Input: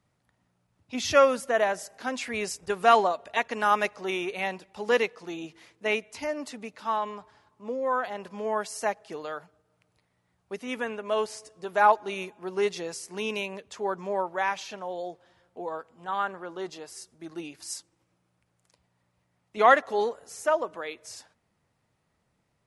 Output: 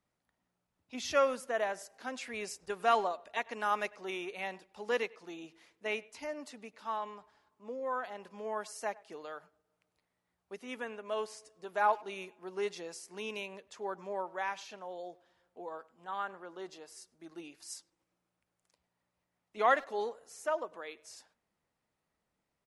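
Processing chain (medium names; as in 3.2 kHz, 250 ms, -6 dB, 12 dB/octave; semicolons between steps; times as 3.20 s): peaking EQ 110 Hz -10 dB 0.98 oct; speakerphone echo 100 ms, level -22 dB; trim -8.5 dB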